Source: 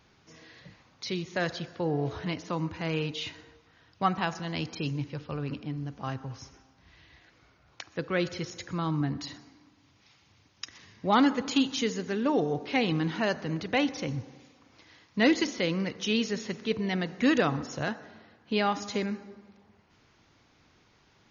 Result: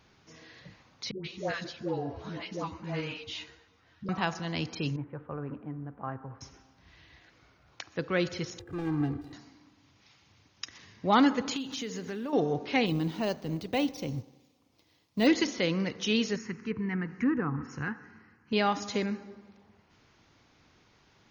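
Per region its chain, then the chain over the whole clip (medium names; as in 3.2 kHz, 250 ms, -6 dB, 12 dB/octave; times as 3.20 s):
1.11–4.09 s: phase dispersion highs, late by 134 ms, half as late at 610 Hz + three-phase chorus
4.96–6.41 s: low-pass 1.6 kHz 24 dB/octave + bass shelf 260 Hz -7 dB
8.59–9.33 s: median filter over 41 samples + treble shelf 3 kHz -10.5 dB + comb 2.5 ms, depth 85%
11.56–12.33 s: block-companded coder 7-bit + compression 5:1, threshold -33 dBFS
12.86–15.27 s: companding laws mixed up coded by A + peaking EQ 1.6 kHz -11 dB 1.1 oct + careless resampling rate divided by 2×, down none, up hold
16.36–18.53 s: static phaser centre 1.5 kHz, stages 4 + low-pass that closes with the level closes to 1.1 kHz, closed at -25.5 dBFS
whole clip: none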